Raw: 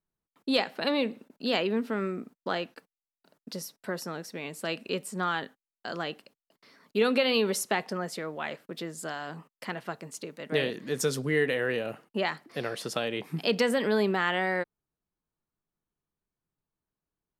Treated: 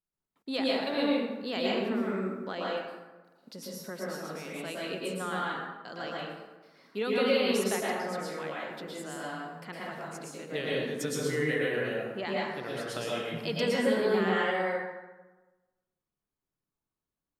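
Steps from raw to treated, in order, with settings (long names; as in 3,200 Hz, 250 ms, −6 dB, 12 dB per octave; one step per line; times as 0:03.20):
dense smooth reverb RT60 1.2 s, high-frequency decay 0.55×, pre-delay 100 ms, DRR −5.5 dB
level −8 dB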